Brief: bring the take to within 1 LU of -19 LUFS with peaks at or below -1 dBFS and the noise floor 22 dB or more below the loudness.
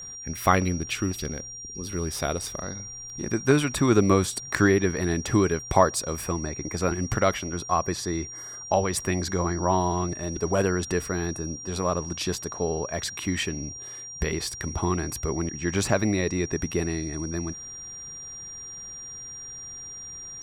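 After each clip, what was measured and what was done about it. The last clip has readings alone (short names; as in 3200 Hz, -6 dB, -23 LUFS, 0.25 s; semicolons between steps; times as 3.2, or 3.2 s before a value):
steady tone 5700 Hz; tone level -37 dBFS; loudness -27.0 LUFS; peak -4.5 dBFS; loudness target -19.0 LUFS
-> notch 5700 Hz, Q 30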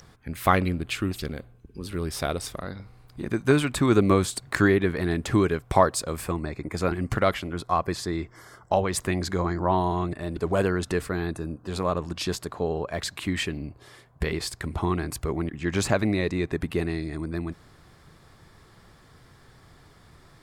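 steady tone none; loudness -26.5 LUFS; peak -4.5 dBFS; loudness target -19.0 LUFS
-> gain +7.5 dB; limiter -1 dBFS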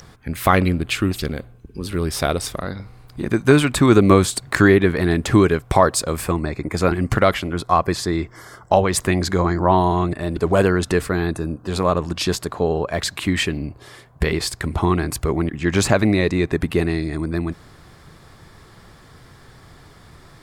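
loudness -19.5 LUFS; peak -1.0 dBFS; noise floor -47 dBFS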